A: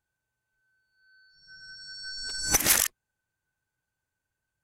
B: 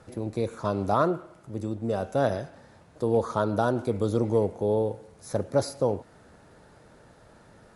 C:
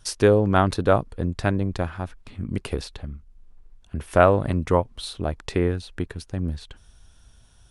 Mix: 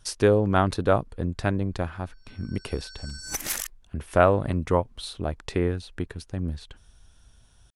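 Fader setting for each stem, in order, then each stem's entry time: -8.0 dB, off, -2.5 dB; 0.80 s, off, 0.00 s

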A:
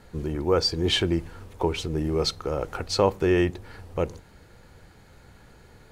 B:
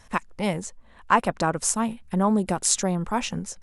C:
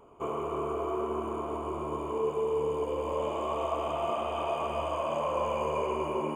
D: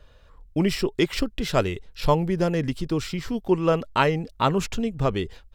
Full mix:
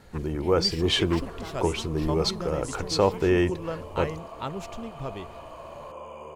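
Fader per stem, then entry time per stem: -0.5, -19.0, -11.0, -12.0 dB; 0.00, 0.00, 0.60, 0.00 s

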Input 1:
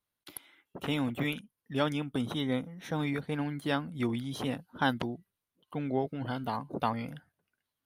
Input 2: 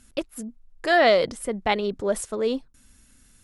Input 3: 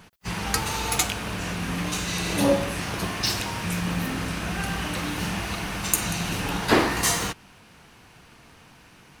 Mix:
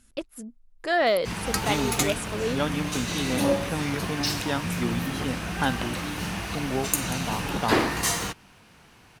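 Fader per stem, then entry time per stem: +2.0, -4.5, -2.5 dB; 0.80, 0.00, 1.00 s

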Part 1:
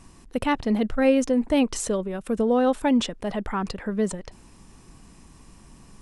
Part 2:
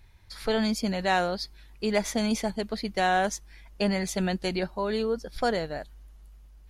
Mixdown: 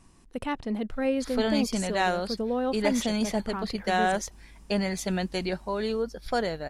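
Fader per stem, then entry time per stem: -7.5, -1.0 dB; 0.00, 0.90 s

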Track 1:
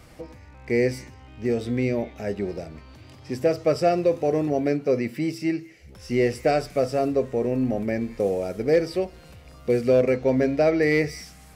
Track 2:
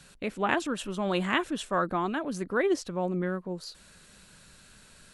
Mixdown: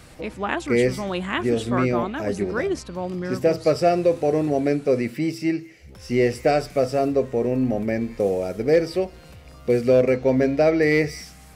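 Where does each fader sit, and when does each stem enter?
+2.0, +1.0 dB; 0.00, 0.00 s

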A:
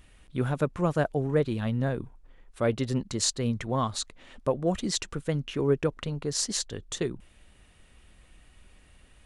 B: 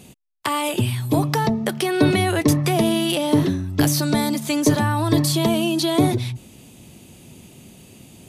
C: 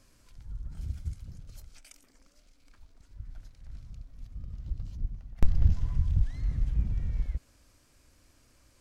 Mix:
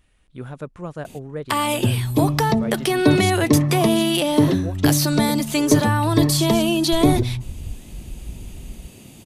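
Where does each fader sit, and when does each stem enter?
-6.0, +1.5, -6.0 dB; 0.00, 1.05, 1.50 s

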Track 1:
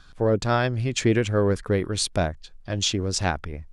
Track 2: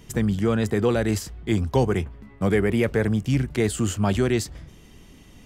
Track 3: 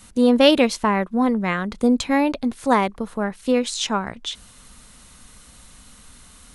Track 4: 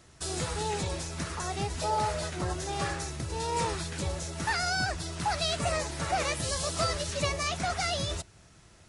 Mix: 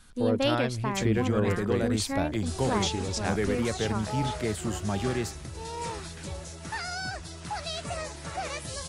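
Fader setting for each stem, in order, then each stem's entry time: -7.0, -8.0, -12.5, -5.0 dB; 0.00, 0.85, 0.00, 2.25 s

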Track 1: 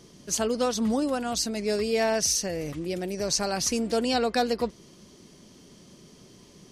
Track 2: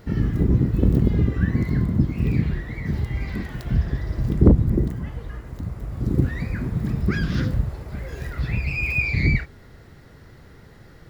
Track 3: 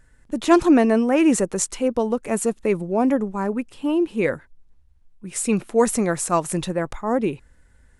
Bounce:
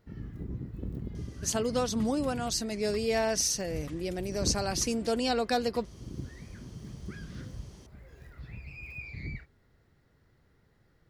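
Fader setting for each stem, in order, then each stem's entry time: -3.5 dB, -19.5 dB, off; 1.15 s, 0.00 s, off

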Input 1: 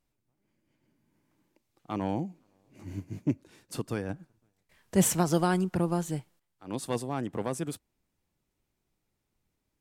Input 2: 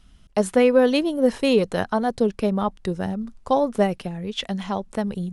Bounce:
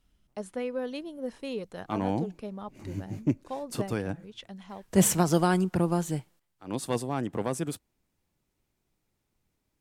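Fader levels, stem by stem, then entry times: +2.0, -16.5 dB; 0.00, 0.00 s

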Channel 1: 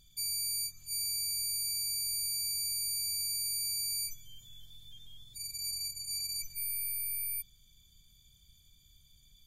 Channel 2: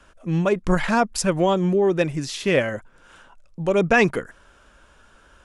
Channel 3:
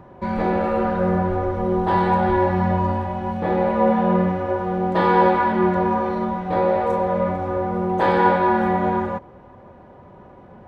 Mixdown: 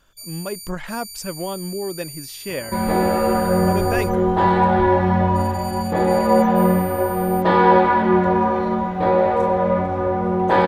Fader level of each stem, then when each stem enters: -2.5, -8.5, +2.5 dB; 0.00, 0.00, 2.50 s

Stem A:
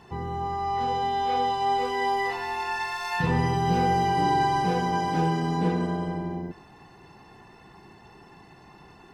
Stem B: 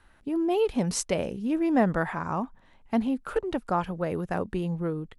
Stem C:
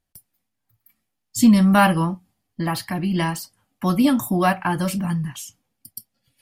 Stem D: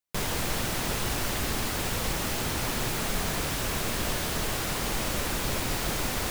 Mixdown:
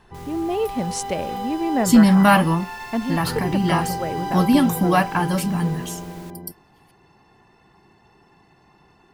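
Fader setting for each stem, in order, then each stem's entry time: -5.0, +1.0, +1.0, -16.5 dB; 0.00, 0.00, 0.50, 0.00 s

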